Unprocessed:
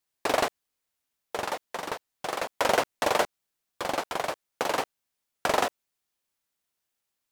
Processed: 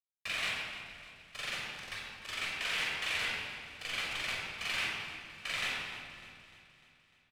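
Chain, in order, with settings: expander -27 dBFS; dynamic bell 5.9 kHz, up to -5 dB, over -46 dBFS, Q 1.2; peak limiter -19.5 dBFS, peak gain reduction 10 dB; resonant high-pass 2.5 kHz, resonance Q 2.3; bit crusher 6-bit; distance through air 59 m; feedback delay 300 ms, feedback 56%, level -15 dB; simulated room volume 2800 m³, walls mixed, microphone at 6 m; trim -5 dB

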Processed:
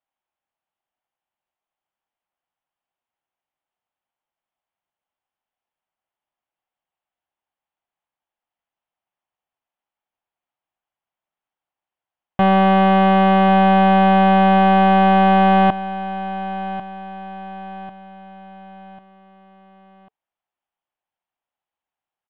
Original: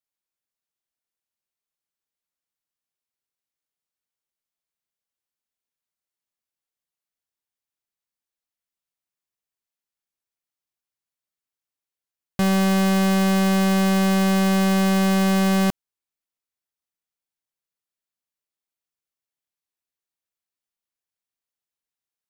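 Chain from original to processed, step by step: elliptic low-pass 3.2 kHz, stop band 80 dB; peaking EQ 790 Hz +12 dB 0.92 oct; band-stop 440 Hz, Q 12; feedback delay 1095 ms, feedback 44%, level -14 dB; trim +3 dB

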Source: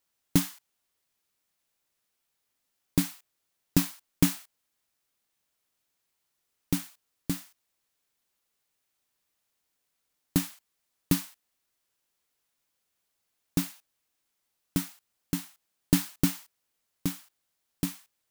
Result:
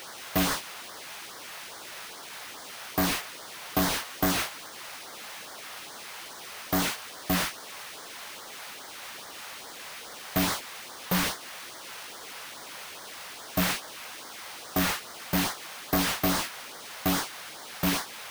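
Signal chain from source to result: jump at every zero crossing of -20 dBFS; gate with hold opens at -19 dBFS; LFO notch sine 2.4 Hz 270–2700 Hz; careless resampling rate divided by 3×, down filtered, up zero stuff; overdrive pedal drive 23 dB, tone 1.6 kHz, clips at -7 dBFS

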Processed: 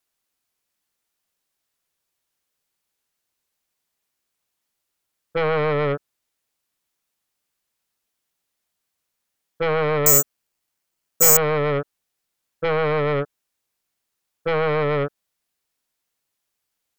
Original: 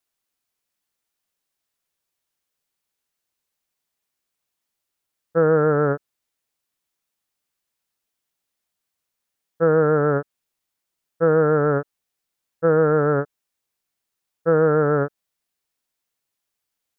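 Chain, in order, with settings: sine folder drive 9 dB, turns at -7 dBFS; 10.06–11.37 s: careless resampling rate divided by 6×, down filtered, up zero stuff; trim -10.5 dB

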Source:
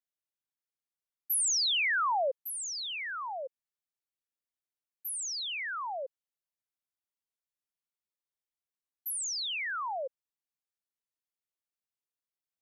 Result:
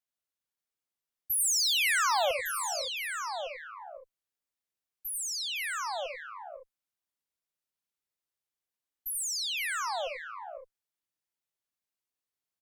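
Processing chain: Chebyshev shaper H 2 -14 dB, 4 -16 dB, 5 -42 dB, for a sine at -25 dBFS; multi-tap echo 85/97/510/539/564/570 ms -7.5/-9.5/-12/-12/-17/-17.5 dB

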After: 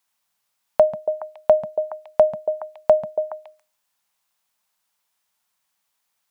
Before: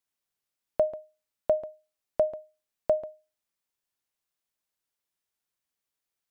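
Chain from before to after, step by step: FFT filter 150 Hz 0 dB, 220 Hz +5 dB, 320 Hz -6 dB, 890 Hz +12 dB, 1.6 kHz +8 dB; on a send: repeats whose band climbs or falls 140 ms, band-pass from 160 Hz, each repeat 1.4 oct, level -2 dB; on the sum: trim +4 dB

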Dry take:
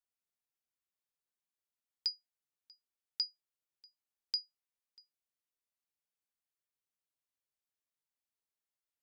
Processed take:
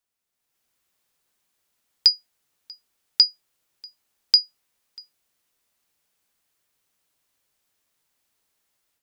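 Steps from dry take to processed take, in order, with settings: level rider gain up to 10.5 dB; trim +8.5 dB

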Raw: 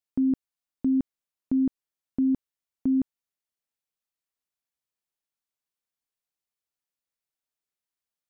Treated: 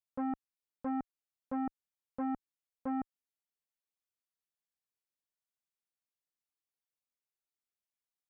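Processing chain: transformer saturation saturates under 500 Hz; trim -8 dB

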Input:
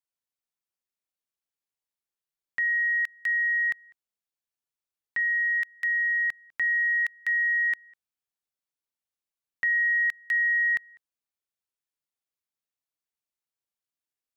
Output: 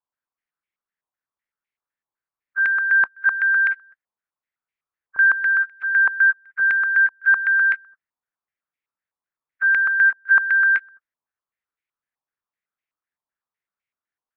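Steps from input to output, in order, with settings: knee-point frequency compression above 1.1 kHz 1.5:1; step-sequenced low-pass 7.9 Hz 1–2.2 kHz

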